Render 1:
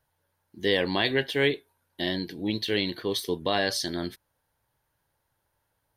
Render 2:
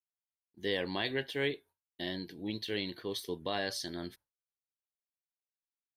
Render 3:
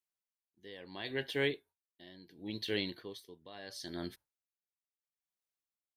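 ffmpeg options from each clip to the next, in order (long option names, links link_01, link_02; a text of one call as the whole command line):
ffmpeg -i in.wav -af "agate=range=-33dB:threshold=-44dB:ratio=3:detection=peak,volume=-9dB" out.wav
ffmpeg -i in.wav -af "aeval=exprs='val(0)*pow(10,-18*(0.5-0.5*cos(2*PI*0.73*n/s))/20)':channel_layout=same,volume=1dB" out.wav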